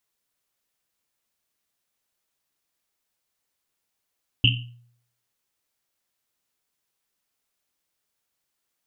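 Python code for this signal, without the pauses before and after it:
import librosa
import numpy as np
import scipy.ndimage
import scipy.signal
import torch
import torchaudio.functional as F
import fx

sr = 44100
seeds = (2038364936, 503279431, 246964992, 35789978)

y = fx.risset_drum(sr, seeds[0], length_s=1.1, hz=120.0, decay_s=0.65, noise_hz=2900.0, noise_width_hz=430.0, noise_pct=45)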